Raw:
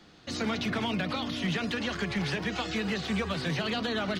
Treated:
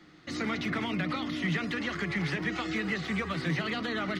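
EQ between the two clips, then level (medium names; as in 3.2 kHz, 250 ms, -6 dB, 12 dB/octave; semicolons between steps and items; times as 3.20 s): graphic EQ with 31 bands 160 Hz +8 dB, 315 Hz +11 dB, 1.25 kHz +7 dB, 2 kHz +11 dB; -5.0 dB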